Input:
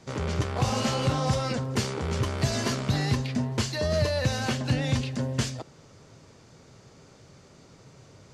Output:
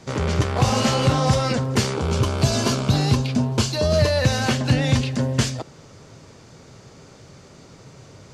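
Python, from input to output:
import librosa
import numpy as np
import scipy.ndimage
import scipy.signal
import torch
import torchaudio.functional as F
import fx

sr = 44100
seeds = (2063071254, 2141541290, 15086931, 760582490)

y = fx.peak_eq(x, sr, hz=1900.0, db=-13.5, octaves=0.23, at=(1.96, 3.99))
y = y * 10.0 ** (7.0 / 20.0)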